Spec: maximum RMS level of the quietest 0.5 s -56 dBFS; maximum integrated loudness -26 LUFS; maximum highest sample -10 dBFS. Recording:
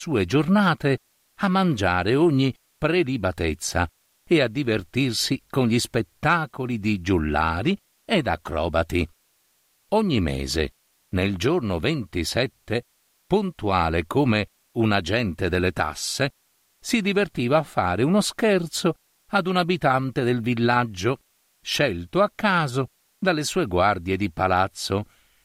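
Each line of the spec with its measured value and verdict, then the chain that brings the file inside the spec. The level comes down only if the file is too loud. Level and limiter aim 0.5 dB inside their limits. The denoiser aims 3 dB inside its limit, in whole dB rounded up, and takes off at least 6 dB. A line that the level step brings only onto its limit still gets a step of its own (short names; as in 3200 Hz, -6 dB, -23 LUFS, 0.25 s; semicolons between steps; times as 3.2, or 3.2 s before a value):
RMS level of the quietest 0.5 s -66 dBFS: OK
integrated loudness -23.5 LUFS: fail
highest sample -7.5 dBFS: fail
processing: gain -3 dB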